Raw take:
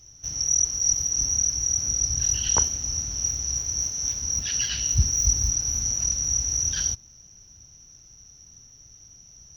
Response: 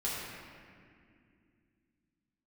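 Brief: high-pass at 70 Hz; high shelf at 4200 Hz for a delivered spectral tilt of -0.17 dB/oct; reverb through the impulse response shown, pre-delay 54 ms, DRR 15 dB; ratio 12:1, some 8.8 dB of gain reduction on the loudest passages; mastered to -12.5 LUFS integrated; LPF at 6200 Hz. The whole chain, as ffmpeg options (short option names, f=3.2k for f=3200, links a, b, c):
-filter_complex "[0:a]highpass=70,lowpass=6.2k,highshelf=f=4.2k:g=3,acompressor=threshold=-26dB:ratio=12,asplit=2[a][b];[1:a]atrim=start_sample=2205,adelay=54[c];[b][c]afir=irnorm=-1:irlink=0,volume=-20.5dB[d];[a][d]amix=inputs=2:normalize=0,volume=15dB"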